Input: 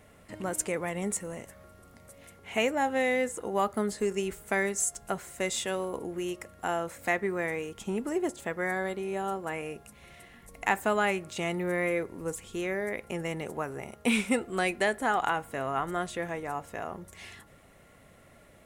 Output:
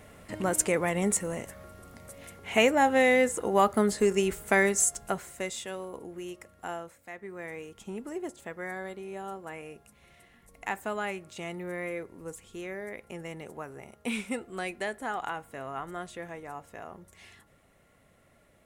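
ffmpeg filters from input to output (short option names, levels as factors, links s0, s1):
-af "volume=6.68,afade=t=out:st=4.73:d=0.83:silence=0.281838,afade=t=out:st=6.72:d=0.33:silence=0.251189,afade=t=in:st=7.05:d=0.56:silence=0.266073"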